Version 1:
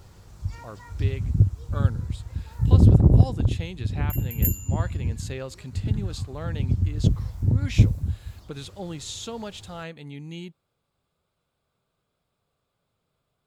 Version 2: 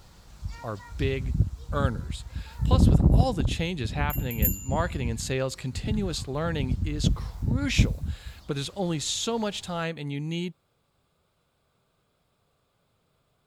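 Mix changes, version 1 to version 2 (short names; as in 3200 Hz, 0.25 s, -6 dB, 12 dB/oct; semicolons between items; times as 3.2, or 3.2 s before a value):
speech +6.5 dB; background: add fifteen-band EQ 100 Hz -9 dB, 400 Hz -6 dB, 4000 Hz +4 dB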